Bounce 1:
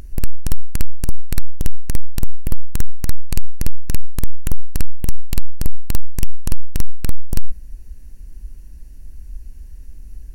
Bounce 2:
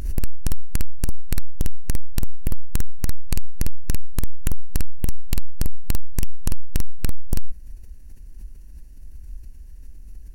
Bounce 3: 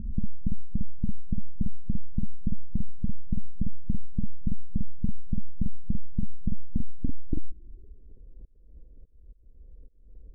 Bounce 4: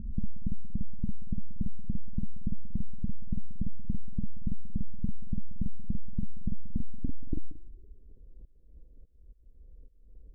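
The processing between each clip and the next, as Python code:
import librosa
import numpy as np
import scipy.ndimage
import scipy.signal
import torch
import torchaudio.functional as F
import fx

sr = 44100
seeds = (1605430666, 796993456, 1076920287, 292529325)

y1 = fx.pre_swell(x, sr, db_per_s=80.0)
y1 = y1 * librosa.db_to_amplitude(-5.5)
y2 = fx.auto_swell(y1, sr, attack_ms=334.0)
y2 = fx.filter_sweep_lowpass(y2, sr, from_hz=210.0, to_hz=490.0, start_s=6.63, end_s=8.28, q=5.1)
y2 = y2 * librosa.db_to_amplitude(-7.5)
y3 = y2 + 10.0 ** (-16.5 / 20.0) * np.pad(y2, (int(181 * sr / 1000.0), 0))[:len(y2)]
y3 = y3 * librosa.db_to_amplitude(-3.5)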